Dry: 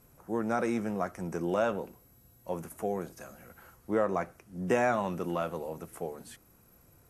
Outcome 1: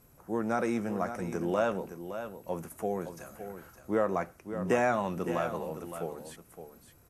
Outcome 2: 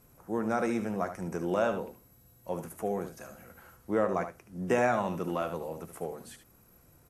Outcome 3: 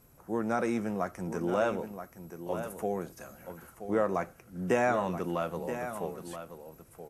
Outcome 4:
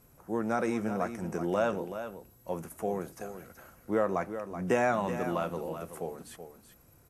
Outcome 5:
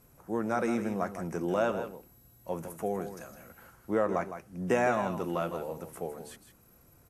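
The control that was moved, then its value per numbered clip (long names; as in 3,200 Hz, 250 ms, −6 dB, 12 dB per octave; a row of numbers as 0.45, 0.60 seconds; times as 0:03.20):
single-tap delay, delay time: 565, 74, 977, 378, 159 milliseconds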